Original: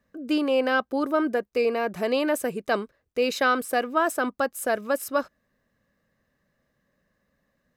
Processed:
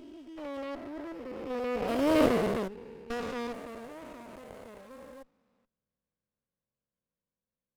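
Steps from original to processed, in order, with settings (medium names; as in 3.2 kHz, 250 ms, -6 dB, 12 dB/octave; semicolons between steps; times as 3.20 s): spectrogram pixelated in time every 400 ms; Doppler pass-by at 2.28 s, 21 m/s, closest 3.7 m; sliding maximum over 17 samples; trim +8.5 dB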